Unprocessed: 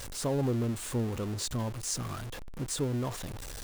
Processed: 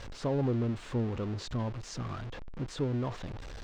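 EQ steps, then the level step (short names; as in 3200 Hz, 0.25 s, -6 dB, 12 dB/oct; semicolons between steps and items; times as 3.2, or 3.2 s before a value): air absorption 180 m; 0.0 dB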